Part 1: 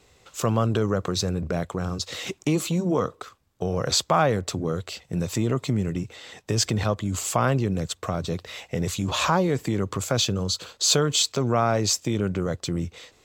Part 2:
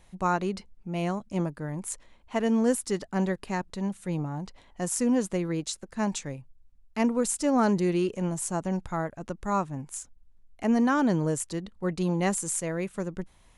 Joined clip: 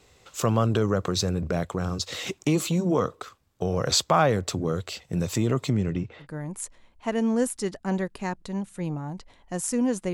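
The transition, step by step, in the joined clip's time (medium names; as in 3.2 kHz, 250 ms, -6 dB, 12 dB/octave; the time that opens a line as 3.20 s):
part 1
5.69–6.27 s: low-pass 8.4 kHz -> 1.6 kHz
6.23 s: go over to part 2 from 1.51 s, crossfade 0.08 s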